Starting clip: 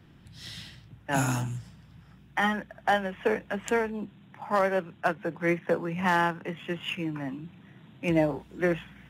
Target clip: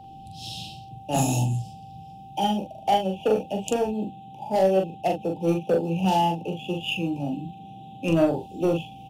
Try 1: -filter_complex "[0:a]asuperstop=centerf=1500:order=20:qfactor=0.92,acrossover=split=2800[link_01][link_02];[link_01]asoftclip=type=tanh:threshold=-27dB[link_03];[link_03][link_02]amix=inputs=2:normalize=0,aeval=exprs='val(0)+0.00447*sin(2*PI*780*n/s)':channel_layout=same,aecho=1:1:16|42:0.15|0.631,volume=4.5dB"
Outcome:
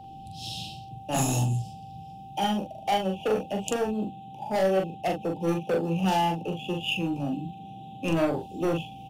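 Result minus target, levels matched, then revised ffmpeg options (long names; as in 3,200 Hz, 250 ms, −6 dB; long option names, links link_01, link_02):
soft clipping: distortion +9 dB
-filter_complex "[0:a]asuperstop=centerf=1500:order=20:qfactor=0.92,acrossover=split=2800[link_01][link_02];[link_01]asoftclip=type=tanh:threshold=-19dB[link_03];[link_03][link_02]amix=inputs=2:normalize=0,aeval=exprs='val(0)+0.00447*sin(2*PI*780*n/s)':channel_layout=same,aecho=1:1:16|42:0.15|0.631,volume=4.5dB"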